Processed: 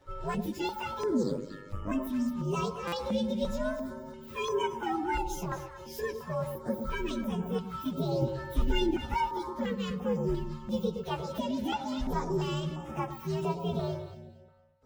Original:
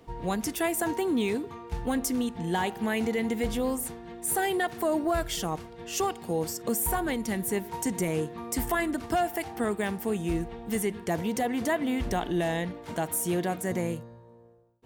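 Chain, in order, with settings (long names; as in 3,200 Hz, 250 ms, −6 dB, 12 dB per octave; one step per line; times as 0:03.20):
partials spread apart or drawn together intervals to 126%
high-shelf EQ 8,300 Hz −9.5 dB
delay that swaps between a low-pass and a high-pass 116 ms, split 980 Hz, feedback 50%, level −6 dB
0:01.23–0:01.92: ring modulation 50 Hz
0:08.22–0:09.14: low-shelf EQ 240 Hz +11 dB
buffer that repeats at 0:02.87, samples 256, times 8
notch on a step sequencer 2.9 Hz 220–4,200 Hz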